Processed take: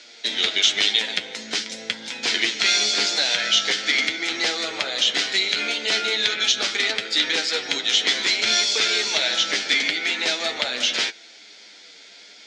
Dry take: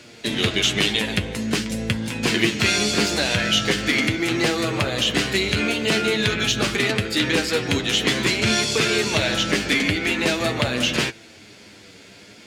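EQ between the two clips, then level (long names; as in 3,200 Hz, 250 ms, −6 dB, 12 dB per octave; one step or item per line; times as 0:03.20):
loudspeaker in its box 320–5,200 Hz, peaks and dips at 360 Hz −4 dB, 550 Hz −3 dB, 1,100 Hz −9 dB, 1,700 Hz −4 dB, 2,700 Hz −9 dB, 4,600 Hz −4 dB
spectral tilt +4 dB per octave
0.0 dB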